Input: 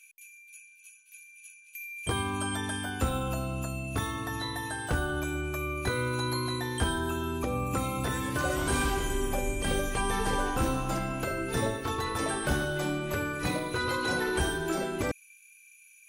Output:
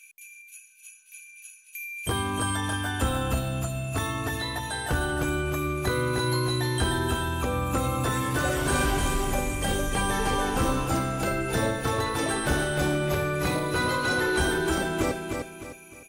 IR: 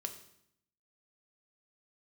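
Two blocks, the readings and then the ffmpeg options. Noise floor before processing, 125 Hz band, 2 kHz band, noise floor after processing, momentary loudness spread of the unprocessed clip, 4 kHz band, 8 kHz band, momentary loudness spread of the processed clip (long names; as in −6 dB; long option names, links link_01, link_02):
−57 dBFS, +5.0 dB, +4.0 dB, −51 dBFS, 12 LU, +4.5 dB, +4.0 dB, 14 LU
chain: -filter_complex "[0:a]asplit=2[link_01][link_02];[link_02]asoftclip=type=tanh:threshold=-30dB,volume=-4dB[link_03];[link_01][link_03]amix=inputs=2:normalize=0,aecho=1:1:305|610|915|1220|1525:0.596|0.214|0.0772|0.0278|0.01"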